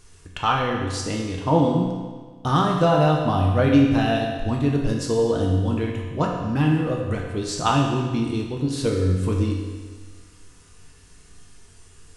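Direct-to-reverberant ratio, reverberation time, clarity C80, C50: -1.0 dB, 1.5 s, 4.0 dB, 2.5 dB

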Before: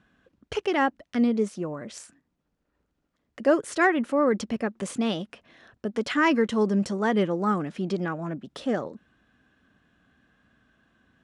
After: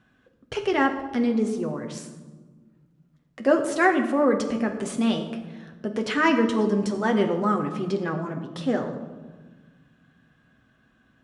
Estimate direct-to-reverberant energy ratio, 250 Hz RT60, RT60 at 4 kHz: 3.5 dB, 2.5 s, 0.80 s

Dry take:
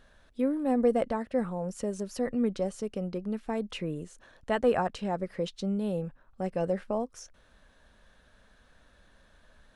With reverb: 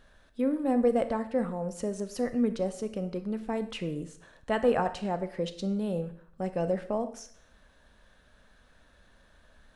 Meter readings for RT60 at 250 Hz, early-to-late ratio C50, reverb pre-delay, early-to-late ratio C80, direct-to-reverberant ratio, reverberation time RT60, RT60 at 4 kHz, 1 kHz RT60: 0.65 s, 12.5 dB, 26 ms, 16.0 dB, 10.5 dB, 0.65 s, 0.60 s, 0.60 s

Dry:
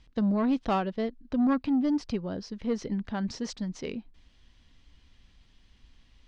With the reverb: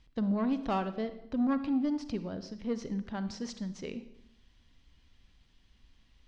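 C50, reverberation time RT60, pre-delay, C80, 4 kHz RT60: 12.0 dB, 0.80 s, 37 ms, 14.5 dB, 0.70 s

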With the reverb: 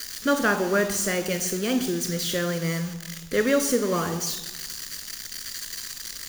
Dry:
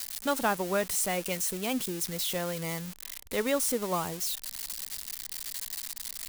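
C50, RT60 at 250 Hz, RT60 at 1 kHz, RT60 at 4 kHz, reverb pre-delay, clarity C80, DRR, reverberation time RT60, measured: 11.0 dB, 1.4 s, 0.95 s, 0.75 s, 20 ms, 12.5 dB, 8.0 dB, 1.1 s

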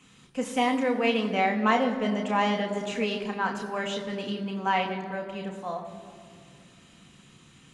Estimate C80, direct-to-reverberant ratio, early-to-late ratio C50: 10.0 dB, 1.5 dB, 9.0 dB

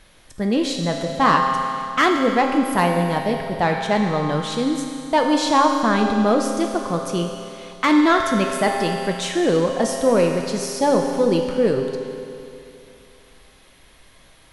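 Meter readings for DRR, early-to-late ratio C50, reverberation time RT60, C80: 2.0 dB, 3.5 dB, 2.7 s, 4.5 dB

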